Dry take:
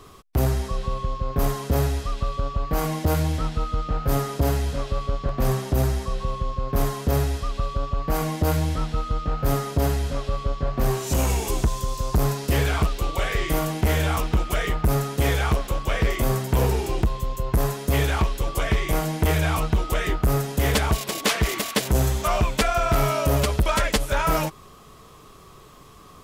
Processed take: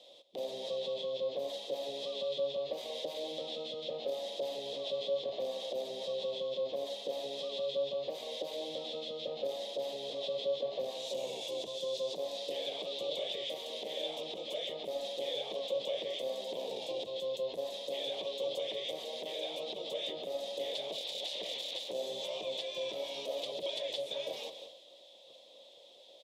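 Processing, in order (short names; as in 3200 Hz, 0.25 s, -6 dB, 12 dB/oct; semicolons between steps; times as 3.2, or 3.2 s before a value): spectral gate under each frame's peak -10 dB weak; compressor, threshold -30 dBFS, peak gain reduction 10 dB; limiter -24 dBFS, peak gain reduction 7 dB; transient shaper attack +1 dB, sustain +8 dB; double band-pass 1400 Hz, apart 2.7 oct; echo 0.185 s -14.5 dB; gain +6 dB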